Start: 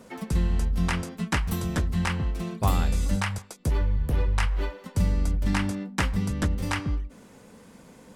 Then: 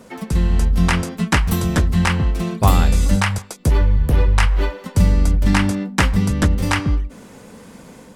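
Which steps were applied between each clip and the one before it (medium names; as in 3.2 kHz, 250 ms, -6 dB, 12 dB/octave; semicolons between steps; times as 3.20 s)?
level rider gain up to 4 dB; trim +5.5 dB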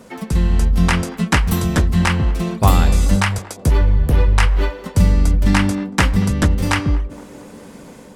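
band-passed feedback delay 232 ms, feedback 84%, band-pass 470 Hz, level -15.5 dB; trim +1 dB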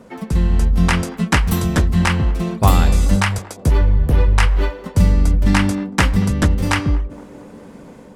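tape noise reduction on one side only decoder only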